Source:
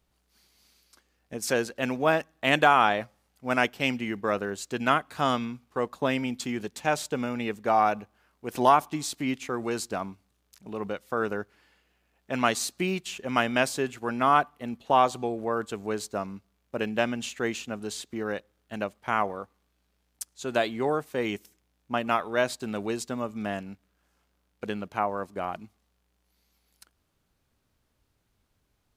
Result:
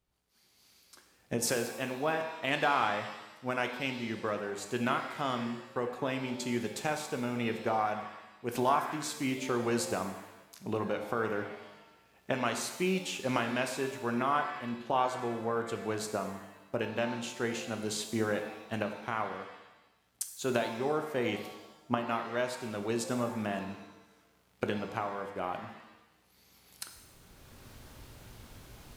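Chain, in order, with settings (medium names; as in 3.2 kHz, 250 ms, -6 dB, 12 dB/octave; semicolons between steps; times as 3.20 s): recorder AGC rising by 12 dB/s; pitch-shifted reverb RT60 1 s, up +7 st, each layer -8 dB, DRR 5.5 dB; trim -9 dB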